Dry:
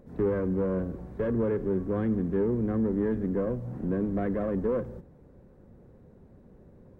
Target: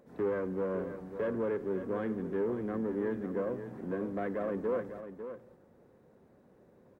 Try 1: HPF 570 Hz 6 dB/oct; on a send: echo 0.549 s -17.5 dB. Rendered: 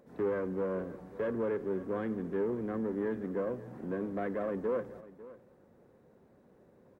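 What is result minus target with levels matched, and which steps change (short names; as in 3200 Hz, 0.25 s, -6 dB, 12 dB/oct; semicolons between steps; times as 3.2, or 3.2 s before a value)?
echo-to-direct -7.5 dB
change: echo 0.549 s -10 dB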